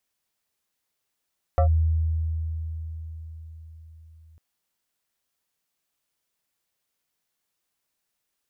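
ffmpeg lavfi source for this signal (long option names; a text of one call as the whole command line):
ffmpeg -f lavfi -i "aevalsrc='0.178*pow(10,-3*t/4.84)*sin(2*PI*80.3*t+1.1*clip(1-t/0.1,0,1)*sin(2*PI*7.79*80.3*t))':duration=2.8:sample_rate=44100" out.wav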